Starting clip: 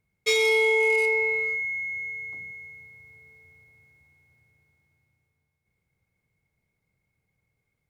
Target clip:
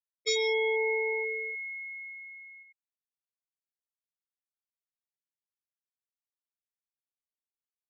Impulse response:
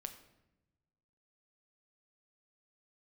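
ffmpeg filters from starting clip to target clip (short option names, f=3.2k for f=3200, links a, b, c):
-af "afftfilt=real='re*gte(hypot(re,im),0.0708)':imag='im*gte(hypot(re,im),0.0708)':win_size=1024:overlap=0.75,equalizer=f=100:t=o:w=0.67:g=10,equalizer=f=400:t=o:w=0.67:g=-6,equalizer=f=1k:t=o:w=0.67:g=-4,equalizer=f=2.5k:t=o:w=0.67:g=-12"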